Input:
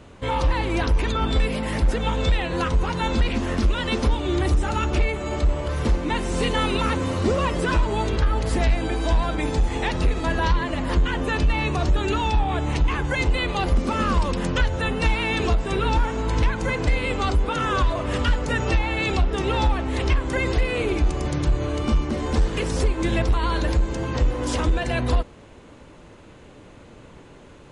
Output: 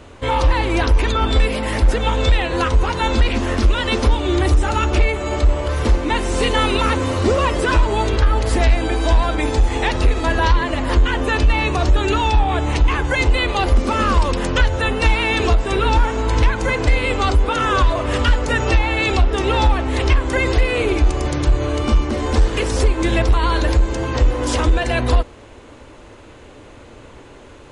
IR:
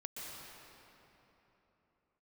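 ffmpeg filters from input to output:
-af "equalizer=frequency=170:width_type=o:width=0.61:gain=-10.5,volume=6dB"

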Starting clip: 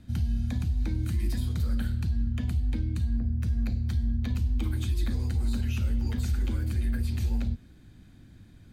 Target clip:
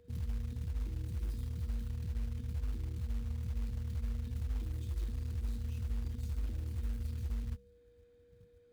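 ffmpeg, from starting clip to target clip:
ffmpeg -i in.wav -filter_complex "[0:a]afwtdn=0.0224,bass=frequency=250:gain=-11,treble=frequency=4000:gain=-4,bandreject=frequency=65.61:width_type=h:width=4,bandreject=frequency=131.22:width_type=h:width=4,bandreject=frequency=196.83:width_type=h:width=4,bandreject=frequency=262.44:width_type=h:width=4,acrossover=split=150|3000[link_01][link_02][link_03];[link_02]acompressor=threshold=-59dB:ratio=5[link_04];[link_01][link_04][link_03]amix=inputs=3:normalize=0,acrusher=bits=6:mode=log:mix=0:aa=0.000001,aeval=exprs='val(0)+0.000631*sin(2*PI*480*n/s)':channel_layout=same,volume=2dB" out.wav

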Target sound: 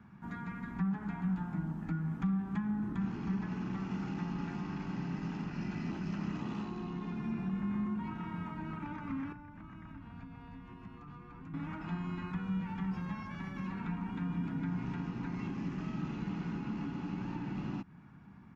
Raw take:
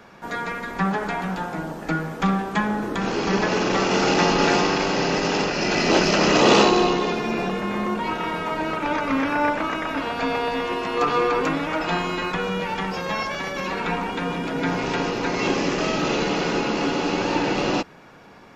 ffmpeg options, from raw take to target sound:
ffmpeg -i in.wav -filter_complex "[0:a]acompressor=threshold=-26dB:ratio=6,firequalizer=gain_entry='entry(190,0);entry(500,-29);entry(860,-15);entry(1400,-15);entry(4800,-25)':delay=0.05:min_phase=1,asettb=1/sr,asplit=3[link_01][link_02][link_03];[link_01]atrim=end=9.324[link_04];[link_02]atrim=start=9.32:end=11.54,asetpts=PTS-STARTPTS,afade=type=in:duration=0.004:curve=qsin,afade=type=out:start_time=2.216:duration=0.004:curve=qsin,acrossover=split=140[link_05][link_06];[link_06]acompressor=threshold=-51dB:ratio=6[link_07];[link_05][link_07]amix=inputs=2:normalize=0[link_08];[link_03]atrim=start=11.536[link_09];[link_04][link_08]acrossfade=duration=0.004:curve1=hsin:curve2=qsin[link_10];[link_10][link_09]acrossfade=duration=0.004:curve1=qsin:curve2=hsin,highpass=48,equalizer=frequency=3700:width=1.5:gain=-2.5" out.wav

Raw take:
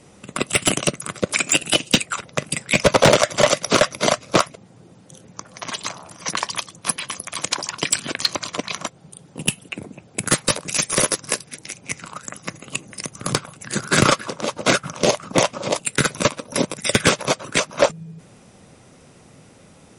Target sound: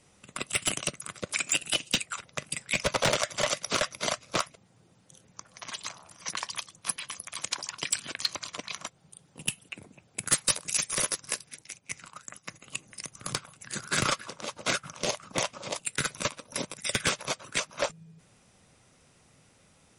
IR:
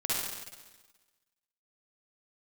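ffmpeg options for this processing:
-filter_complex "[0:a]asettb=1/sr,asplit=3[link_01][link_02][link_03];[link_01]atrim=end=10.324[link_04];[link_02]atrim=start=10.32:end=10.77,asetpts=PTS-STARTPTS,afade=type=in:duration=0.004:curve=qsin,afade=type=out:start_time=0.446:duration=0.004:curve=qsin,highshelf=frequency=5500:gain=7.5[link_05];[link_03]atrim=start=10.766[link_06];[link_04][link_05]acrossfade=duration=0.004:curve1=hsin:curve2=qsin[link_07];[link_07][link_06]acrossfade=duration=0.004:curve1=qsin:curve2=hsin,asplit=3[link_08][link_09][link_10];[link_08]afade=type=out:start_time=11.62:duration=0.02[link_11];[link_09]agate=range=-9dB:threshold=-36dB:ratio=16:detection=peak,afade=type=in:start_time=11.62:duration=0.02,afade=type=out:start_time=12.6:duration=0.02[link_12];[link_10]afade=type=in:start_time=12.6:duration=0.02[link_13];[link_11][link_12][link_13]amix=inputs=3:normalize=0,equalizer=frequency=300:width=0.38:gain=-8,volume=-8.5dB"

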